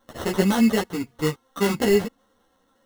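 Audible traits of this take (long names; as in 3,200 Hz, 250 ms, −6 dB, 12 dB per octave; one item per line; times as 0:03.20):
aliases and images of a low sample rate 2,400 Hz, jitter 0%
a shimmering, thickened sound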